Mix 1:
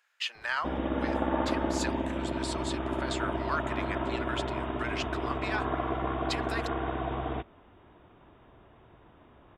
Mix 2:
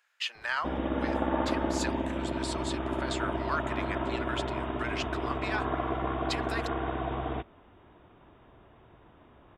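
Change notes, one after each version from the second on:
nothing changed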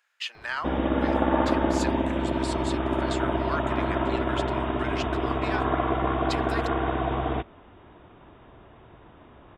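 background +6.0 dB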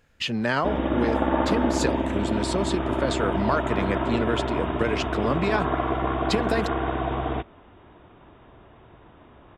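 speech: remove four-pole ladder high-pass 820 Hz, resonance 20%

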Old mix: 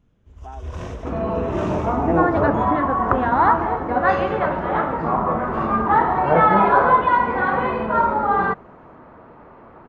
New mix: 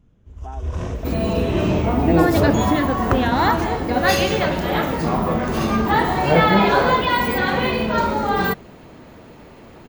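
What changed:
first sound: add high-shelf EQ 6,900 Hz +6.5 dB
second sound: remove low-pass with resonance 1,200 Hz, resonance Q 1.9
master: add low-shelf EQ 470 Hz +6 dB

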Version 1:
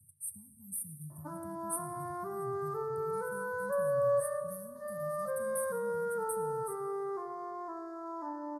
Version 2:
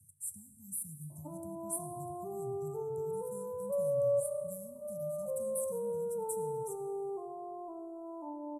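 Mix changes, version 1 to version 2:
speech: remove linear-phase brick-wall band-stop 1,100–8,200 Hz
master: add elliptic band-stop filter 810–8,500 Hz, stop band 40 dB

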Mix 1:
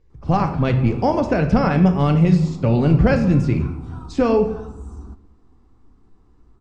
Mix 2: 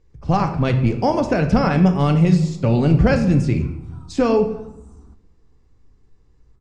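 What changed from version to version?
background −9.5 dB
master: add high-shelf EQ 6,600 Hz +11 dB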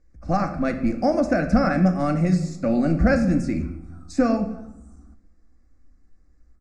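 master: add phaser with its sweep stopped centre 630 Hz, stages 8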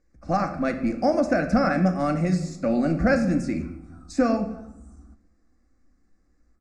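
speech: add low-shelf EQ 120 Hz −10.5 dB

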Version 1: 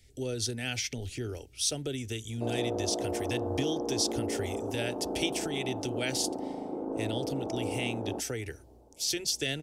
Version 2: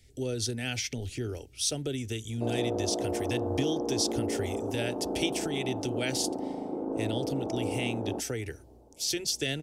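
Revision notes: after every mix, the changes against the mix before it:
master: add parametric band 190 Hz +2.5 dB 2.8 octaves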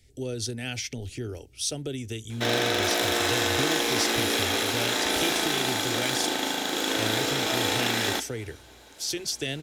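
background: remove Bessel low-pass filter 510 Hz, order 8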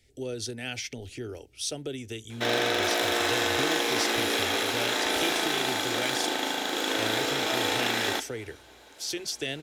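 master: add bass and treble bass −7 dB, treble −4 dB

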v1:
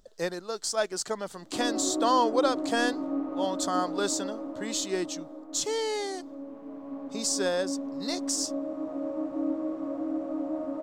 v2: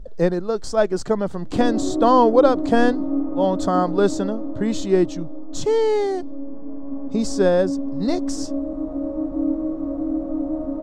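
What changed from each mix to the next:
speech +7.0 dB
master: add spectral tilt −4.5 dB per octave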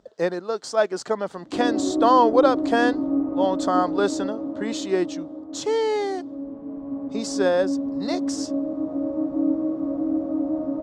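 speech: add meter weighting curve A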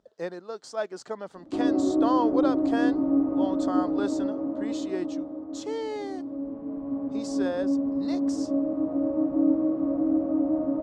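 speech −10.0 dB

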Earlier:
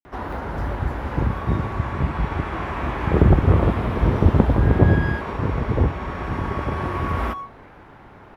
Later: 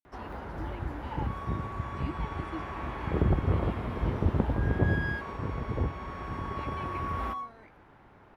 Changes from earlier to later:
first sound −11.0 dB
second sound −4.0 dB

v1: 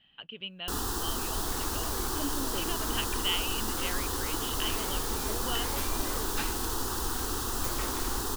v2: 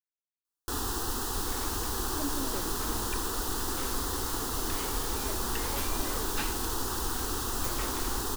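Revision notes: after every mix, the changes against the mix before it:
speech: muted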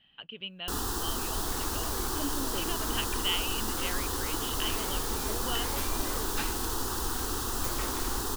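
speech: unmuted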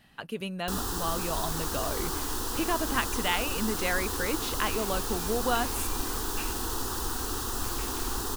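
speech: remove transistor ladder low-pass 3,200 Hz, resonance 85%
second sound: add transistor ladder low-pass 3,000 Hz, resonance 65%

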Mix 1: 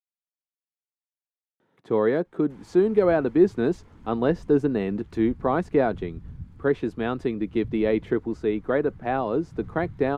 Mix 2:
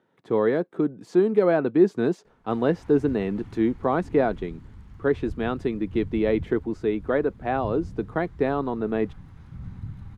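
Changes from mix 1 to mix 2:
speech: entry −1.60 s
background +3.5 dB

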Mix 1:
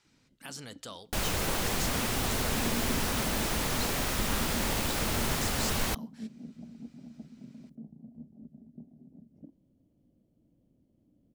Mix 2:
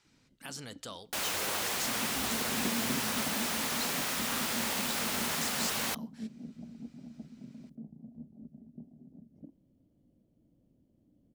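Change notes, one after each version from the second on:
second sound: add high-pass filter 760 Hz 6 dB per octave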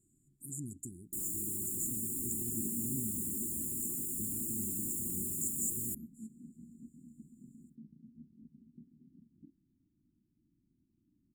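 speech +5.5 dB
first sound −7.0 dB
master: add linear-phase brick-wall band-stop 390–6,800 Hz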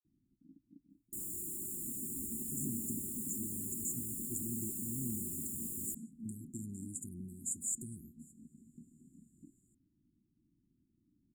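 speech: entry +2.05 s
second sound −4.0 dB

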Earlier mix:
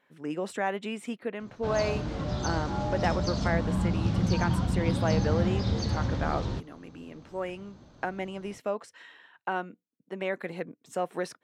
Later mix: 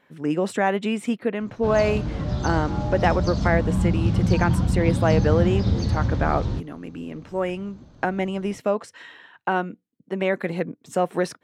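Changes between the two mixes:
speech +7.0 dB
master: add low-shelf EQ 240 Hz +8 dB

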